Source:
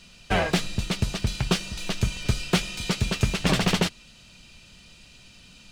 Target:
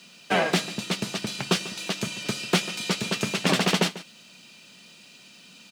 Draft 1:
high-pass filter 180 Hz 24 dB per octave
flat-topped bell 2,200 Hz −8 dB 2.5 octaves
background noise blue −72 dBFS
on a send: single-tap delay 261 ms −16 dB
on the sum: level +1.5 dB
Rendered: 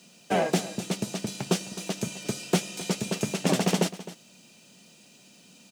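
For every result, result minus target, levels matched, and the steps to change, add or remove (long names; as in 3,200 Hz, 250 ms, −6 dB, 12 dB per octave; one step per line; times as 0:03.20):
echo 117 ms late; 2,000 Hz band −5.0 dB
change: single-tap delay 144 ms −16 dB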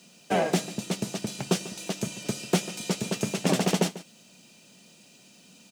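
2,000 Hz band −5.0 dB
remove: flat-topped bell 2,200 Hz −8 dB 2.5 octaves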